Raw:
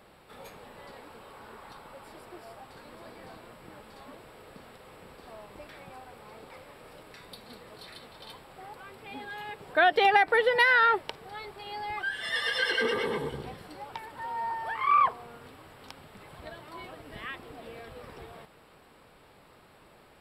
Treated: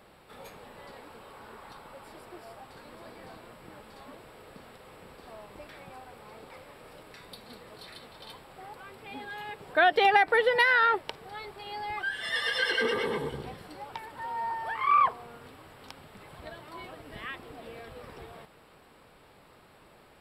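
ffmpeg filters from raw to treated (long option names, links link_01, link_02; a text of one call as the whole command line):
ffmpeg -i in.wav -filter_complex "[0:a]asettb=1/sr,asplit=3[link_01][link_02][link_03];[link_01]atrim=end=10.614[link_04];[link_02]atrim=start=10.61:end=11.07,asetpts=PTS-STARTPTS,afade=type=in:duration=0.004:curve=qsin,afade=type=out:start_time=0.456:duration=0.004:curve=qsin,tremolo=f=93:d=0.261[link_05];[link_03]atrim=start=11.066[link_06];[link_04][link_05]acrossfade=duration=0.004:curve1=hsin:curve2=qsin[link_07];[link_07][link_06]acrossfade=duration=0.004:curve1=qsin:curve2=hsin" out.wav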